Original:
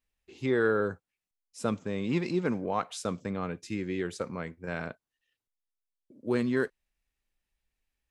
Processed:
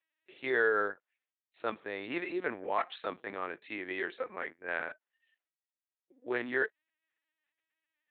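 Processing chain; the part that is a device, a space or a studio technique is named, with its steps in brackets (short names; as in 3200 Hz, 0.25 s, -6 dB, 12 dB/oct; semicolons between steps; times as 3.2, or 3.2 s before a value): talking toy (LPC vocoder at 8 kHz pitch kept; HPF 470 Hz 12 dB/oct; bell 1800 Hz +7.5 dB 0.49 oct)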